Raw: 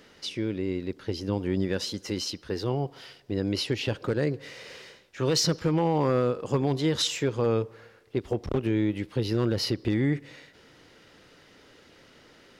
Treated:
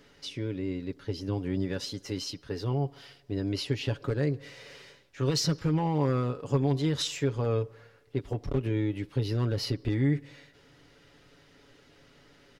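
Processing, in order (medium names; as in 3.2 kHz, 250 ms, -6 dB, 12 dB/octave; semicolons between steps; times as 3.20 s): bass shelf 100 Hz +10.5 dB; comb 7.1 ms, depth 52%; trim -5.5 dB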